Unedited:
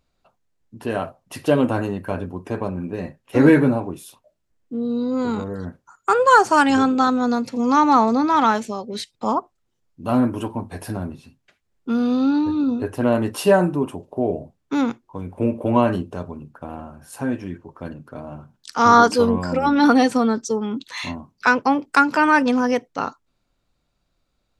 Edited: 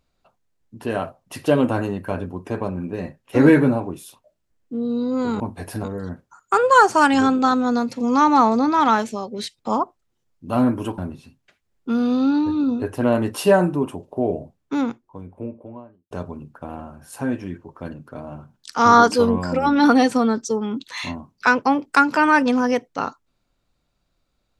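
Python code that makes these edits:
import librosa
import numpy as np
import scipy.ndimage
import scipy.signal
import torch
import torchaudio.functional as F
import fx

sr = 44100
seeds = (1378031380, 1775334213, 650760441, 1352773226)

y = fx.studio_fade_out(x, sr, start_s=14.34, length_s=1.77)
y = fx.edit(y, sr, fx.move(start_s=10.54, length_s=0.44, to_s=5.4), tone=tone)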